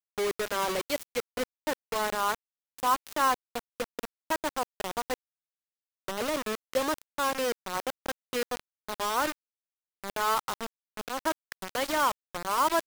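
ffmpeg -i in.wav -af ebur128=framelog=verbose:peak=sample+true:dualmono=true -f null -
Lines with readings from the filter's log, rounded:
Integrated loudness:
  I:         -28.2 LUFS
  Threshold: -38.4 LUFS
Loudness range:
  LRA:         3.0 LU
  Threshold: -49.1 LUFS
  LRA low:   -30.6 LUFS
  LRA high:  -27.6 LUFS
Sample peak:
  Peak:      -12.8 dBFS
True peak:
  Peak:      -12.2 dBFS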